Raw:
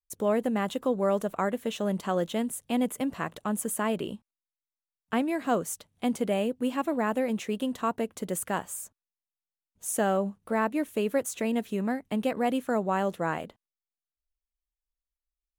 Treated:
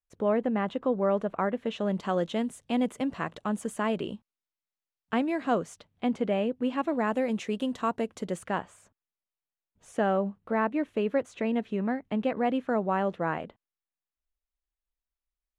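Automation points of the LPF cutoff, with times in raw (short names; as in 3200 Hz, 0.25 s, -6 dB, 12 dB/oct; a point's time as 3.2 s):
1.49 s 2500 Hz
2.1 s 5400 Hz
5.32 s 5400 Hz
6.07 s 3200 Hz
6.59 s 3200 Hz
7.2 s 6700 Hz
8.15 s 6700 Hz
8.67 s 2900 Hz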